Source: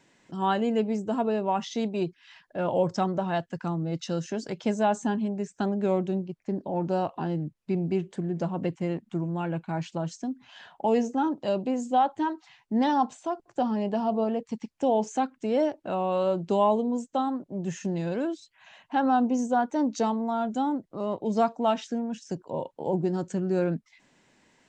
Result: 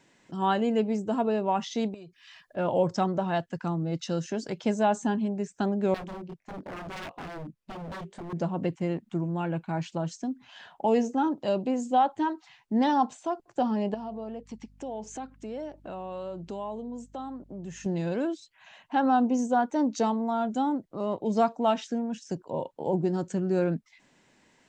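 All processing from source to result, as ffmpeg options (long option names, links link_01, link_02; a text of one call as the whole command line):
ffmpeg -i in.wav -filter_complex "[0:a]asettb=1/sr,asplit=3[link_01][link_02][link_03];[link_01]atrim=end=1.944[link_04];[link_02]atrim=start=1.94:end=2.57,asetpts=PTS-STARTPTS,afade=type=in:duration=0.004:curve=qsin,afade=type=out:start_time=0.626:duration=0.004:curve=qsin,highshelf=frequency=4900:gain=6,aecho=1:1:1.7:0.39,atrim=end_sample=27783,acompressor=threshold=-46dB:ratio=4:attack=3.2:release=140:knee=1:detection=peak[link_05];[link_03]atrim=start=2.566[link_06];[link_04][link_05]acrossfade=duration=0.004:curve1=hsin:curve2=qsin[link_07];[link_07][link_06]acrossfade=duration=0.004:curve1=qsin:curve2=hsin,asettb=1/sr,asplit=3[link_08][link_09][link_10];[link_08]atrim=end=5.944[link_11];[link_09]atrim=start=5.94:end=8.33,asetpts=PTS-STARTPTS,afade=type=in:duration=0.004:curve=qsin,afade=type=out:start_time=2.386:duration=0.004:curve=qsin,flanger=delay=19.5:depth=4.8:speed=1.7,aeval=exprs='0.0211*(abs(mod(val(0)/0.0211+3,4)-2)-1)':channel_layout=same[link_12];[link_10]atrim=start=8.326[link_13];[link_11][link_12]acrossfade=duration=0.004:curve1=hsin:curve2=qsin[link_14];[link_14][link_13]acrossfade=duration=0.004:curve1=qsin:curve2=hsin,asettb=1/sr,asplit=3[link_15][link_16][link_17];[link_15]atrim=end=13.944[link_18];[link_16]atrim=start=13.94:end=17.86,asetpts=PTS-STARTPTS,afade=type=in:duration=0.004:curve=qsin,afade=type=out:start_time=3.916:duration=0.004:curve=qsin,acompressor=threshold=-39dB:ratio=2.5:attack=3.2:release=140:knee=1:detection=peak,aeval=exprs='val(0)+0.00158*(sin(2*PI*50*n/s)+sin(2*PI*2*50*n/s)/2+sin(2*PI*3*50*n/s)/3+sin(2*PI*4*50*n/s)/4+sin(2*PI*5*50*n/s)/5)':channel_layout=same[link_19];[link_17]atrim=start=17.856[link_20];[link_18][link_19]acrossfade=duration=0.004:curve1=hsin:curve2=qsin[link_21];[link_21][link_20]acrossfade=duration=0.004:curve1=qsin:curve2=hsin" out.wav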